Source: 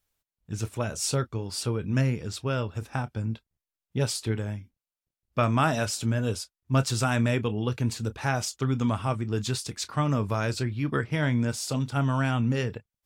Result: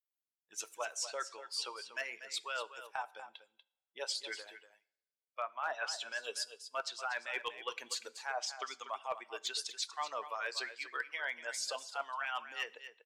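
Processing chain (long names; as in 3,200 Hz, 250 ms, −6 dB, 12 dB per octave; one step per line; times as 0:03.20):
spectral dynamics exaggerated over time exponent 1.5
high-pass filter 660 Hz 24 dB per octave
treble cut that deepens with the level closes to 1,900 Hz, closed at −27.5 dBFS
harmonic and percussive parts rebalanced harmonic −13 dB
reversed playback
downward compressor 12 to 1, threshold −42 dBFS, peak gain reduction 19 dB
reversed playback
gain into a clipping stage and back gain 34.5 dB
on a send: single-tap delay 241 ms −11.5 dB
on the sum: coupled-rooms reverb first 0.63 s, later 1.9 s, from −27 dB, DRR 18 dB
level +7.5 dB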